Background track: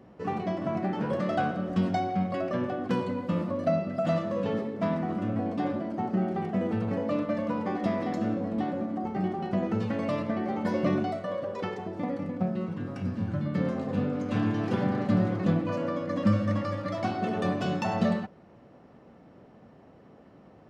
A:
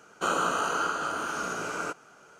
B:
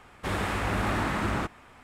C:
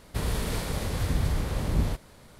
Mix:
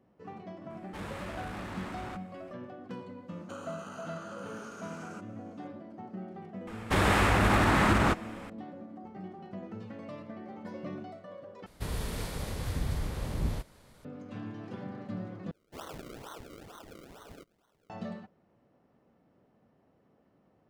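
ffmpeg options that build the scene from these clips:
ffmpeg -i bed.wav -i cue0.wav -i cue1.wav -i cue2.wav -filter_complex "[2:a]asplit=2[link_01][link_02];[1:a]asplit=2[link_03][link_04];[0:a]volume=-14dB[link_05];[link_01]asoftclip=type=tanh:threshold=-28dB[link_06];[link_03]acompressor=threshold=-30dB:ratio=6:attack=3.2:release=140:knee=1:detection=peak[link_07];[link_02]alimiter=level_in=19dB:limit=-1dB:release=50:level=0:latency=1[link_08];[link_04]acrusher=samples=35:mix=1:aa=0.000001:lfo=1:lforange=35:lforate=2.2[link_09];[link_05]asplit=3[link_10][link_11][link_12];[link_10]atrim=end=11.664[link_13];[3:a]atrim=end=2.39,asetpts=PTS-STARTPTS,volume=-6dB[link_14];[link_11]atrim=start=14.046:end=15.514[link_15];[link_09]atrim=end=2.39,asetpts=PTS-STARTPTS,volume=-17.5dB[link_16];[link_12]atrim=start=17.896[link_17];[link_06]atrim=end=1.83,asetpts=PTS-STARTPTS,volume=-9.5dB,afade=type=in:duration=0.004:curve=hsin,afade=type=out:start_time=1.826:duration=0.004:curve=hsin,adelay=700[link_18];[link_07]atrim=end=2.39,asetpts=PTS-STARTPTS,volume=-12.5dB,afade=type=in:duration=0.004:curve=hsin,afade=type=out:start_time=2.386:duration=0.004:curve=hsin,adelay=3280[link_19];[link_08]atrim=end=1.83,asetpts=PTS-STARTPTS,volume=-13.5dB,afade=type=in:duration=0.004:curve=hsin,afade=type=out:start_time=1.826:duration=0.004:curve=hsin,adelay=6670[link_20];[link_13][link_14]acrossfade=duration=0.004:curve1=hsin:curve2=hsin[link_21];[link_21][link_15]acrossfade=duration=0.004:curve1=hsin:curve2=hsin[link_22];[link_22][link_16]acrossfade=duration=0.004:curve1=hsin:curve2=hsin[link_23];[link_23][link_17]acrossfade=duration=0.004:curve1=hsin:curve2=hsin[link_24];[link_24][link_18][link_19][link_20]amix=inputs=4:normalize=0" out.wav

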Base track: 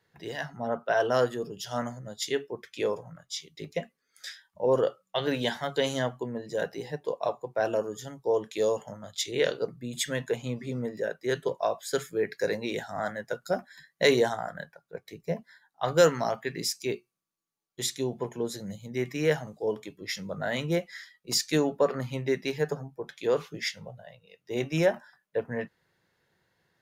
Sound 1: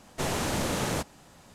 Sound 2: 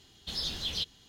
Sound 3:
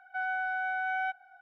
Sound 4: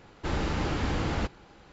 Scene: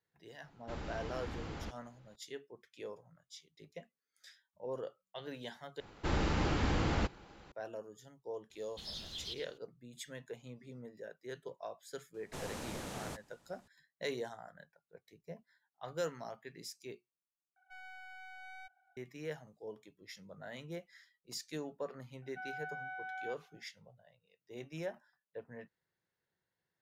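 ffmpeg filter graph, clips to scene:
ffmpeg -i bed.wav -i cue0.wav -i cue1.wav -i cue2.wav -i cue3.wav -filter_complex "[4:a]asplit=2[link_01][link_02];[3:a]asplit=2[link_03][link_04];[0:a]volume=-17dB[link_05];[2:a]aecho=1:1:110:0.299[link_06];[link_03]aeval=exprs='clip(val(0),-1,0.00631)':channel_layout=same[link_07];[link_05]asplit=3[link_08][link_09][link_10];[link_08]atrim=end=5.804[link_11];[link_02]atrim=end=1.72,asetpts=PTS-STARTPTS,volume=-3dB[link_12];[link_09]atrim=start=7.516:end=17.564[link_13];[link_07]atrim=end=1.41,asetpts=PTS-STARTPTS,volume=-16dB[link_14];[link_10]atrim=start=18.966[link_15];[link_01]atrim=end=1.72,asetpts=PTS-STARTPTS,volume=-14.5dB,afade=type=in:duration=0.004:curve=hsin,afade=type=out:start_time=1.716:duration=0.004:curve=hsin,adelay=440[link_16];[link_06]atrim=end=1.08,asetpts=PTS-STARTPTS,volume=-11dB,afade=type=in:duration=0.004:curve=hsin,afade=type=out:start_time=1.076:duration=0.004:curve=hsin,adelay=374850S[link_17];[1:a]atrim=end=1.54,asetpts=PTS-STARTPTS,volume=-14.5dB,afade=type=in:duration=0.004:curve=hsin,afade=type=out:start_time=1.536:duration=0.004:curve=hsin,adelay=12140[link_18];[link_04]atrim=end=1.41,asetpts=PTS-STARTPTS,volume=-12dB,afade=type=in:duration=0.004:curve=hsin,afade=type=out:start_time=1.406:duration=0.004:curve=hsin,adelay=22220[link_19];[link_11][link_12]acrossfade=duration=0.004:curve1=hsin:curve2=hsin[link_20];[link_20][link_13]acrossfade=duration=0.004:curve1=hsin:curve2=hsin[link_21];[link_21][link_14]acrossfade=duration=0.004:curve1=hsin:curve2=hsin[link_22];[link_22][link_15]acrossfade=duration=0.004:curve1=hsin:curve2=hsin[link_23];[link_23][link_16][link_17][link_18][link_19]amix=inputs=5:normalize=0" out.wav

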